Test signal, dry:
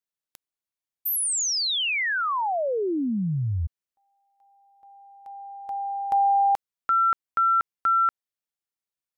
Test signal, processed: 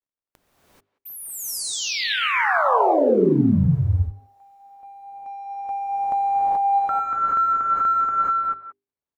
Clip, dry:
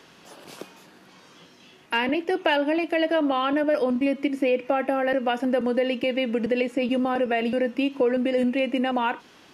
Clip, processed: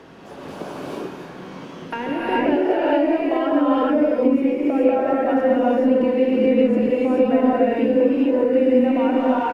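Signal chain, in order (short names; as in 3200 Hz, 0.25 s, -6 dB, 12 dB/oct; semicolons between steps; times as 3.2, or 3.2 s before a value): G.711 law mismatch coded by mu; tilt shelf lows +5.5 dB, about 1300 Hz; notches 50/100/150/200/250/300/350/400 Hz; speakerphone echo 0.18 s, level -18 dB; compressor, threshold -23 dBFS; high shelf 2800 Hz -7.5 dB; non-linear reverb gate 0.46 s rising, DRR -7.5 dB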